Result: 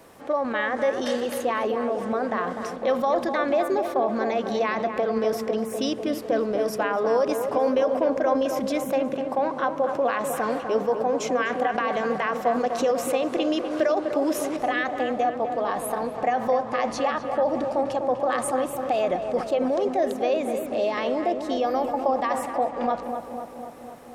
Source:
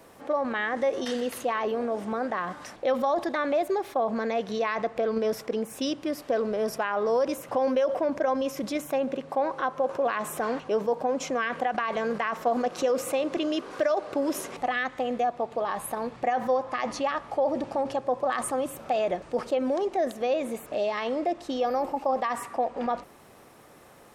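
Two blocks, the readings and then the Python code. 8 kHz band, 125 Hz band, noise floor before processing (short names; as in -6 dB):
+2.0 dB, +4.0 dB, -52 dBFS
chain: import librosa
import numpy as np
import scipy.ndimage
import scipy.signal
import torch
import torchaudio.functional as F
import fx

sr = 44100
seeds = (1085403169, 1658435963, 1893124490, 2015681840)

y = fx.echo_filtered(x, sr, ms=250, feedback_pct=72, hz=1600.0, wet_db=-6.5)
y = y * librosa.db_to_amplitude(2.0)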